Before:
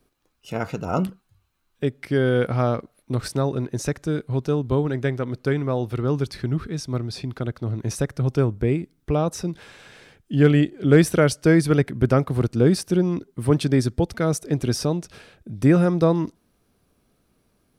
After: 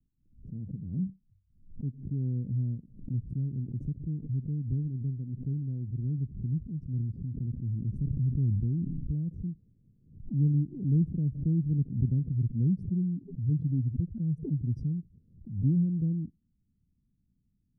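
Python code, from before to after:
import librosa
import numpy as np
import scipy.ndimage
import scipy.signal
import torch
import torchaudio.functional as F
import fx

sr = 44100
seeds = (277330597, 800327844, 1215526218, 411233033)

y = fx.sustainer(x, sr, db_per_s=33.0, at=(6.89, 9.15))
y = fx.spec_expand(y, sr, power=2.0, at=(12.34, 14.98))
y = scipy.signal.sosfilt(scipy.signal.cheby2(4, 70, 950.0, 'lowpass', fs=sr, output='sos'), y)
y = fx.pre_swell(y, sr, db_per_s=110.0)
y = F.gain(torch.from_numpy(y), -5.5).numpy()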